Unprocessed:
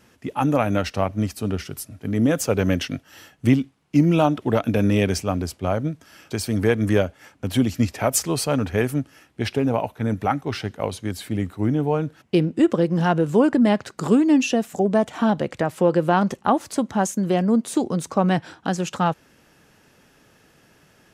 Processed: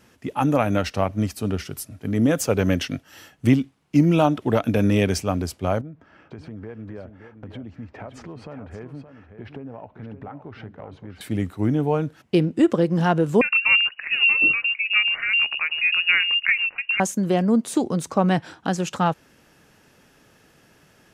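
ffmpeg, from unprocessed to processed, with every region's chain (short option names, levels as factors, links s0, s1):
-filter_complex "[0:a]asettb=1/sr,asplit=3[s0][s1][s2];[s0]atrim=end=5.814[s3];[s1]atrim=start=5.81:end=11.21,asetpts=PTS-STARTPTS,afade=t=in:d=0.004:c=qsin,afade=t=out:st=5.396:d=0.004:c=qsin,lowpass=1600,acompressor=threshold=0.0158:ratio=4:attack=3.2:release=140:knee=1:detection=peak,aecho=1:1:570:0.316,atrim=end_sample=238140[s4];[s2]atrim=start=11.206[s5];[s3][s4]acrossfade=d=0.004:c1=hsin:c2=qsin[s6];[s6][s5]acrossfade=d=0.004:c1=qsin:c2=hsin,asettb=1/sr,asplit=3[s7][s8][s9];[s7]atrim=end=13.414[s10];[s8]atrim=start=13.41:end=17,asetpts=PTS-STARTPTS,afade=t=in:d=0.004:c=qsin,afade=t=out:st=3.586:d=0.004:c=qsin,acrossover=split=400[s11][s12];[s11]adelay=110[s13];[s13][s12]amix=inputs=2:normalize=0,atrim=end_sample=158319,lowpass=f=2600:t=q:w=0.5098,lowpass=f=2600:t=q:w=0.6013,lowpass=f=2600:t=q:w=0.9,lowpass=f=2600:t=q:w=2.563,afreqshift=-3000[s14];[s9]atrim=start=16.996[s15];[s10][s14]acrossfade=d=0.004:c1=hsin:c2=qsin[s16];[s16][s15]acrossfade=d=0.004:c1=qsin:c2=hsin"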